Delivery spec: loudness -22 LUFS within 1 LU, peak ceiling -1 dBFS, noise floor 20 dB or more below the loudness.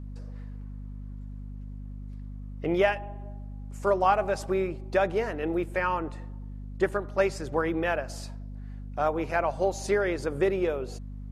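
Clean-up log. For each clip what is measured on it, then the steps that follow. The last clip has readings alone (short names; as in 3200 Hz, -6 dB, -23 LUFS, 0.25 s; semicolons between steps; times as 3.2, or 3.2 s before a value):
hum 50 Hz; harmonics up to 250 Hz; hum level -36 dBFS; loudness -28.0 LUFS; peak -10.0 dBFS; loudness target -22.0 LUFS
-> notches 50/100/150/200/250 Hz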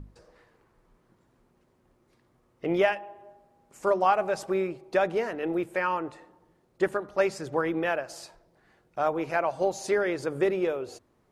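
hum none; loudness -28.0 LUFS; peak -10.5 dBFS; loudness target -22.0 LUFS
-> gain +6 dB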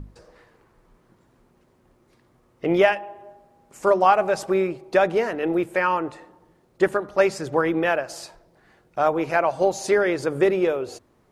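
loudness -22.0 LUFS; peak -4.5 dBFS; noise floor -61 dBFS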